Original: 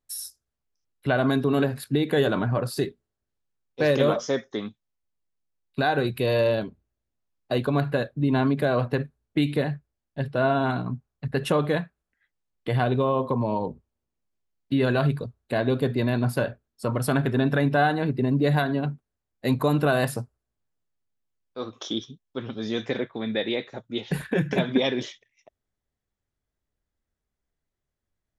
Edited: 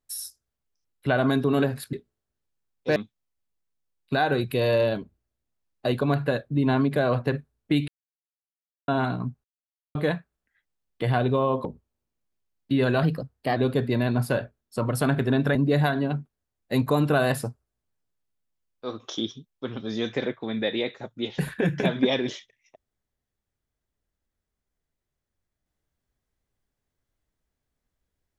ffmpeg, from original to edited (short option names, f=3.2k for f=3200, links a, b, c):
-filter_complex "[0:a]asplit=11[a][b][c][d][e][f][g][h][i][j][k];[a]atrim=end=1.932[l];[b]atrim=start=2.848:end=3.882[m];[c]atrim=start=4.618:end=9.54,asetpts=PTS-STARTPTS,afade=t=out:st=4.918:d=0.004:c=hsin[n];[d]atrim=start=9.54:end=10.54,asetpts=PTS-STARTPTS,volume=0[o];[e]atrim=start=10.54:end=11.1,asetpts=PTS-STARTPTS,afade=t=in:d=0.004:c=hsin,afade=t=out:st=0.556:d=0.004:c=hsin[p];[f]atrim=start=11.1:end=11.61,asetpts=PTS-STARTPTS,volume=0[q];[g]atrim=start=11.61:end=13.312,asetpts=PTS-STARTPTS,afade=t=in:d=0.004:c=hsin[r];[h]atrim=start=13.658:end=15.044[s];[i]atrim=start=15.04:end=15.63,asetpts=PTS-STARTPTS,asetrate=48951,aresample=44100[t];[j]atrim=start=15.626:end=17.622[u];[k]atrim=start=18.278[v];[l][m]acrossfade=d=0.004:c1=hsin:c2=hsin[w];[n][o][p][q][r]concat=n=5:v=0:a=1[x];[w][x]acrossfade=d=0.004:c1=hsin:c2=hsin[y];[y][s]acrossfade=d=0.004:c1=hsin:c2=hsin[z];[z][t]acrossfade=d=0.004:c1=hsin:c2=hsin[aa];[aa][u]acrossfade=d=0.004:c1=hsin:c2=hsin[ab];[ab][v]acrossfade=d=0.004:c1=hsin:c2=hsin"